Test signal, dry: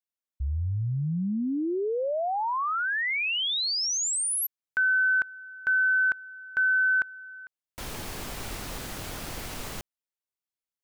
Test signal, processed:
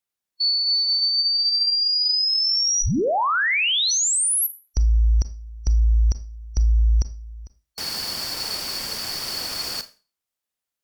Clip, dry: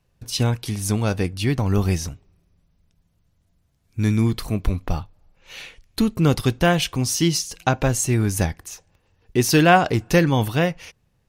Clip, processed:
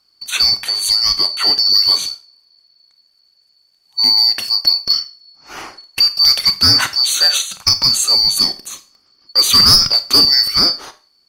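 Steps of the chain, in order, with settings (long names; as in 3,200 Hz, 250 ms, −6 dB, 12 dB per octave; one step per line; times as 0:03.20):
band-splitting scrambler in four parts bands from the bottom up 2341
sine wavefolder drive 6 dB, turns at −1 dBFS
four-comb reverb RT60 0.33 s, combs from 28 ms, DRR 12 dB
level −3 dB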